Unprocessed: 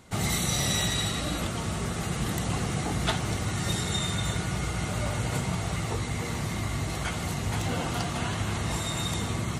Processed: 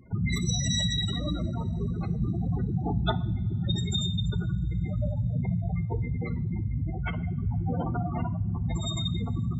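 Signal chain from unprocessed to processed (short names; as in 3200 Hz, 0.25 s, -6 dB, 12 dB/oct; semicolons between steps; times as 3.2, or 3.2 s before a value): spectral gate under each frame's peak -10 dB strong; two-slope reverb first 0.55 s, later 4.1 s, from -18 dB, DRR 14.5 dB; gain +2.5 dB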